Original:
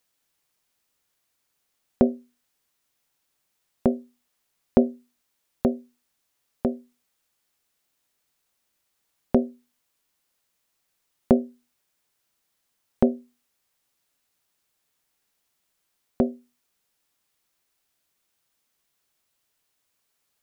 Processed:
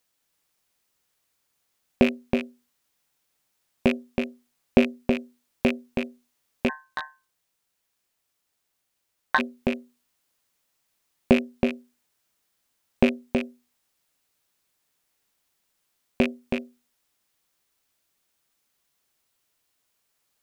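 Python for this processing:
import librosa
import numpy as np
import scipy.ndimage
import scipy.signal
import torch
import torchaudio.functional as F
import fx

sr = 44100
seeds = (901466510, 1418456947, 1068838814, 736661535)

y = fx.rattle_buzz(x, sr, strikes_db=-29.0, level_db=-14.0)
y = y + 10.0 ** (-5.5 / 20.0) * np.pad(y, (int(323 * sr / 1000.0), 0))[:len(y)]
y = fx.ring_mod(y, sr, carrier_hz=1300.0, at=(6.68, 9.38), fade=0.02)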